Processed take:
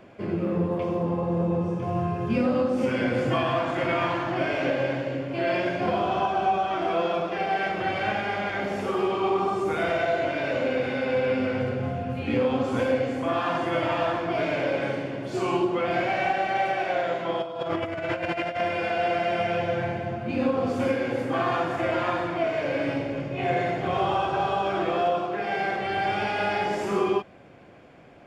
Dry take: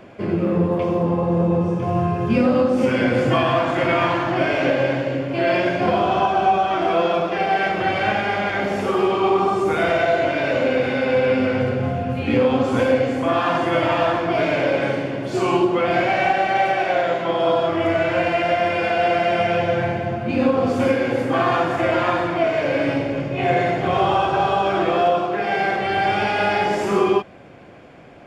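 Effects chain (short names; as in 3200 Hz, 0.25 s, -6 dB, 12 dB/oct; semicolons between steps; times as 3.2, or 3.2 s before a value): 17.42–18.61 negative-ratio compressor -22 dBFS, ratio -0.5; gain -6.5 dB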